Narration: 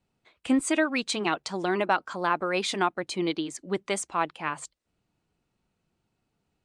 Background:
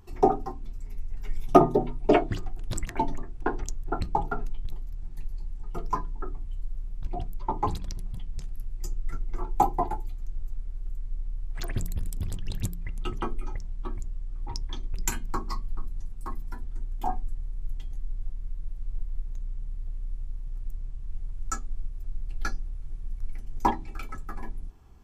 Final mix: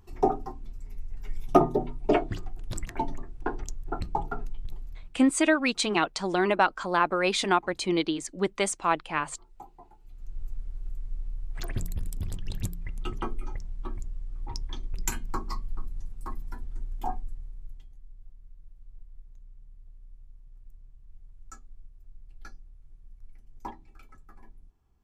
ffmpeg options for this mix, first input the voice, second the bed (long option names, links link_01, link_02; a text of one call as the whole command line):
ffmpeg -i stem1.wav -i stem2.wav -filter_complex "[0:a]adelay=4700,volume=2dB[link_01];[1:a]volume=20.5dB,afade=type=out:start_time=4.86:duration=0.37:silence=0.0794328,afade=type=in:start_time=10.01:duration=0.44:silence=0.0668344,afade=type=out:start_time=16.92:duration=1.01:silence=0.199526[link_02];[link_01][link_02]amix=inputs=2:normalize=0" out.wav